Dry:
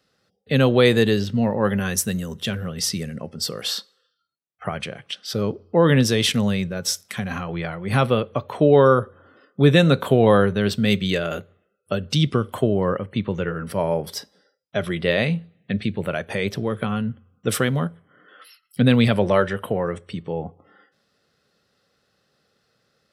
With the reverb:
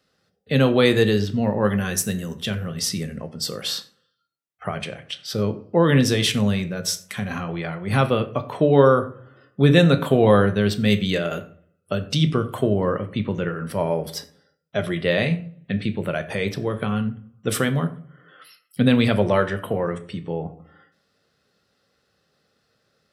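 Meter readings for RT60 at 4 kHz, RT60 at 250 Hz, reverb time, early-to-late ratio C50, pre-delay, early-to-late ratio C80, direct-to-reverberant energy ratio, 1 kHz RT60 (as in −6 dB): 0.25 s, 0.60 s, 0.50 s, 14.5 dB, 11 ms, 18.0 dB, 8.5 dB, 0.45 s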